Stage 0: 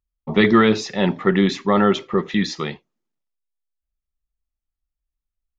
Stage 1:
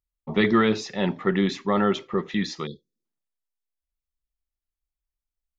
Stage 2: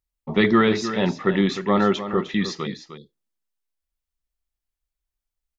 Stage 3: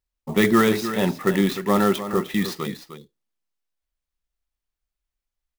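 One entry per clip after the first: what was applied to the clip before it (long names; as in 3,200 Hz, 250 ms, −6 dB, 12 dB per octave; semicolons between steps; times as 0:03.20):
time-frequency box erased 0:02.66–0:03.05, 550–3,300 Hz; level −5.5 dB
single-tap delay 305 ms −11 dB; level +2.5 dB
converter with an unsteady clock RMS 0.025 ms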